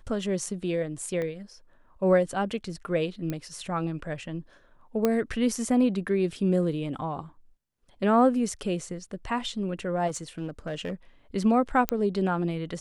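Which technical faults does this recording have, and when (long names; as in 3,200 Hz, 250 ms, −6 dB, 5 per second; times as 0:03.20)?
0:01.22: click −21 dBFS
0:03.30: click −18 dBFS
0:05.05: click −11 dBFS
0:10.07–0:10.92: clipping −27 dBFS
0:11.89: click −8 dBFS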